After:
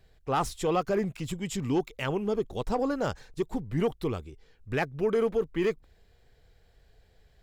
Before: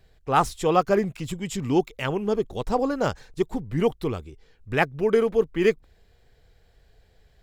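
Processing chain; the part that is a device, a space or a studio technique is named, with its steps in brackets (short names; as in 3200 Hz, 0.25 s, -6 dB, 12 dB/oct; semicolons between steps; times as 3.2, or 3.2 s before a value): soft clipper into limiter (soft clip -12 dBFS, distortion -19 dB; limiter -16.5 dBFS, peak gain reduction 4 dB); gain -2.5 dB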